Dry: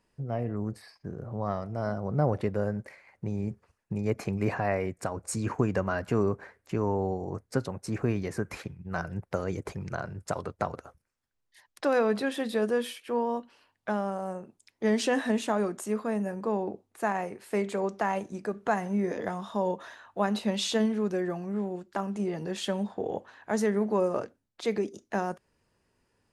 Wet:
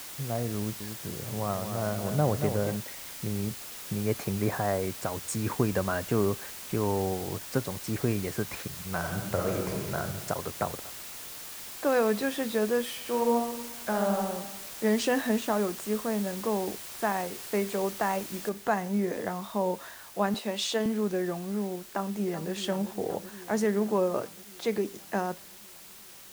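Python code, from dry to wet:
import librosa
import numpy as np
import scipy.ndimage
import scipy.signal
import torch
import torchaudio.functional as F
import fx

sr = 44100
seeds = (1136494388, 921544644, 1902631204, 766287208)

y = fx.echo_crushed(x, sr, ms=231, feedback_pct=35, bits=9, wet_db=-7.5, at=(0.57, 2.76))
y = fx.lowpass(y, sr, hz=fx.line((4.28, 2800.0), (4.82, 1500.0)), slope=24, at=(4.28, 4.82), fade=0.02)
y = fx.peak_eq(y, sr, hz=7300.0, db=8.5, octaves=0.77, at=(6.81, 7.4))
y = fx.reverb_throw(y, sr, start_s=8.97, length_s=0.98, rt60_s=1.3, drr_db=-1.0)
y = fx.lowpass(y, sr, hz=1600.0, slope=12, at=(10.64, 11.85), fade=0.02)
y = fx.reverb_throw(y, sr, start_s=12.85, length_s=1.32, rt60_s=1.1, drr_db=0.5)
y = fx.high_shelf(y, sr, hz=5600.0, db=-6.5, at=(15.4, 16.25))
y = fx.noise_floor_step(y, sr, seeds[0], at_s=18.49, before_db=-42, after_db=-49, tilt_db=0.0)
y = fx.highpass(y, sr, hz=300.0, slope=12, at=(20.34, 20.86))
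y = fx.echo_throw(y, sr, start_s=21.87, length_s=0.66, ms=380, feedback_pct=75, wet_db=-11.5)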